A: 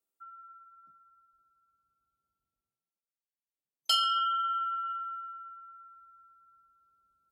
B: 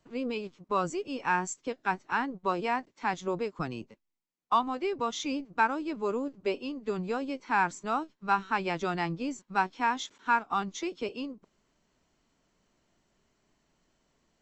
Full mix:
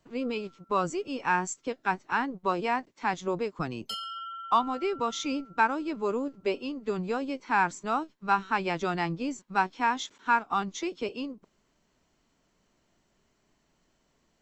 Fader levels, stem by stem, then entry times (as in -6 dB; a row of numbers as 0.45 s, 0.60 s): -10.0 dB, +1.5 dB; 0.00 s, 0.00 s